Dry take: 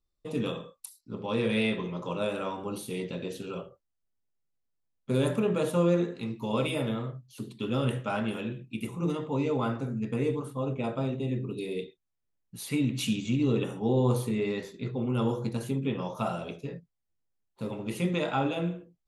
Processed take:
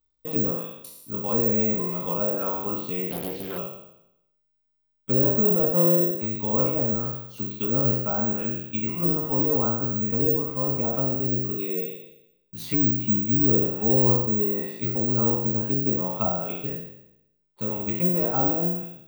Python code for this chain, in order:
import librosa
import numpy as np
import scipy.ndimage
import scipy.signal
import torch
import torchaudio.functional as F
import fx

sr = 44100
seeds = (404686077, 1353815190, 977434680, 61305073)

y = fx.spec_trails(x, sr, decay_s=0.83)
y = fx.env_lowpass_down(y, sr, base_hz=960.0, full_db=-25.0)
y = (np.kron(scipy.signal.resample_poly(y, 1, 2), np.eye(2)[0]) * 2)[:len(y)]
y = fx.doppler_dist(y, sr, depth_ms=0.48, at=(3.11, 3.58))
y = y * 10.0 ** (1.5 / 20.0)